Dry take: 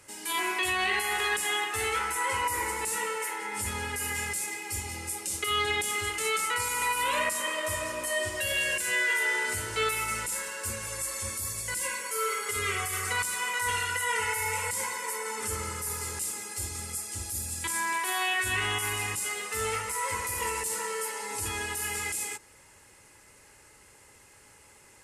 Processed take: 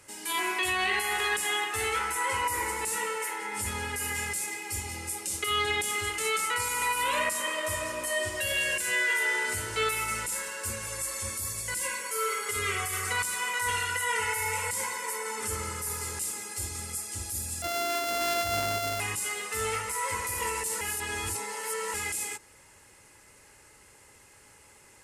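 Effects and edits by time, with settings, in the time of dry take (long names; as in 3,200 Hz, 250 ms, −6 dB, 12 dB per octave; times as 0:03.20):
0:17.62–0:19.00: samples sorted by size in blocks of 64 samples
0:20.81–0:21.94: reverse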